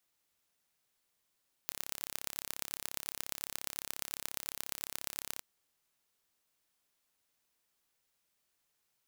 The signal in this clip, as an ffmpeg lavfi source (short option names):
-f lavfi -i "aevalsrc='0.398*eq(mod(n,1286),0)*(0.5+0.5*eq(mod(n,5144),0))':d=3.73:s=44100"